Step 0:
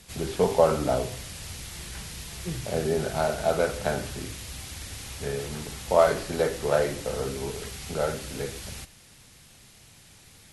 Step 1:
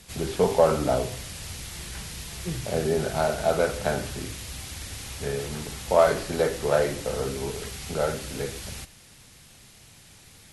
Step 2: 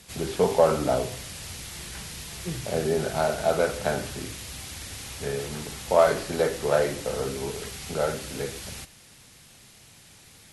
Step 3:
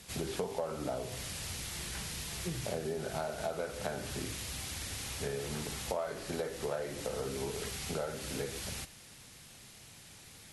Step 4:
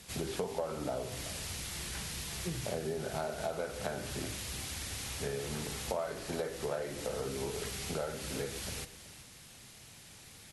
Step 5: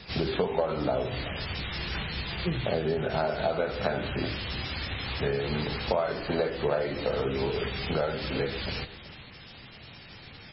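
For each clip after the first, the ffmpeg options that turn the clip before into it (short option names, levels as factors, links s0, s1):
-af "acontrast=37,volume=0.631"
-af "lowshelf=f=72:g=-7.5"
-af "acompressor=threshold=0.0282:ratio=8,volume=0.794"
-af "aecho=1:1:374:0.178"
-af "volume=2.82" -ar 16000 -c:a libmp3lame -b:a 16k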